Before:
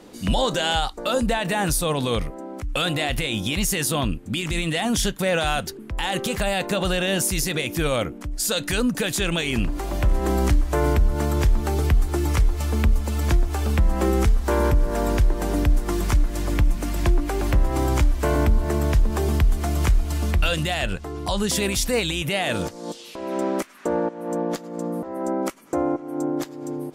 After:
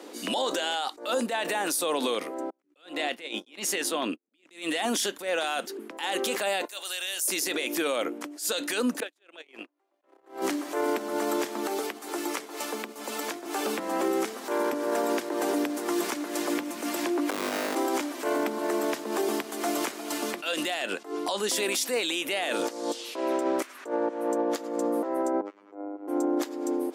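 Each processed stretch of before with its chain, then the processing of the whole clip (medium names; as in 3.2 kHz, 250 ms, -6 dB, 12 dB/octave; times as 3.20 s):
2.50–4.51 s: gate -25 dBFS, range -45 dB + treble shelf 7.4 kHz -11 dB
6.65–7.28 s: differentiator + compression 1.5:1, threshold -32 dBFS + tape noise reduction on one side only decoder only
9.00–10.42 s: high-pass 57 Hz + gate -22 dBFS, range -45 dB + tone controls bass -14 dB, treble -11 dB
11.67–13.46 s: bass shelf 160 Hz -7.5 dB + hum notches 50/100/150/200/250/300/350/400 Hz + compression 4:1, threshold -26 dBFS
17.30–17.75 s: Schmitt trigger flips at -22 dBFS + flutter echo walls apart 3.4 m, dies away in 1 s
25.41–26.08 s: tape spacing loss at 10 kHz 38 dB + compression 5:1, threshold -34 dBFS + robot voice 101 Hz
whole clip: steep high-pass 270 Hz 36 dB/octave; peak limiter -21.5 dBFS; attacks held to a fixed rise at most 170 dB/s; trim +3 dB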